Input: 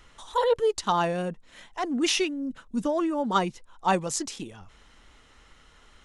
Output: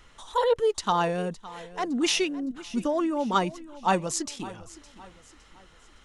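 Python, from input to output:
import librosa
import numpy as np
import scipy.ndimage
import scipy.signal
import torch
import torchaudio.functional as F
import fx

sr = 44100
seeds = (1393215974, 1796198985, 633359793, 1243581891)

y = fx.echo_feedback(x, sr, ms=562, feedback_pct=41, wet_db=-18.0)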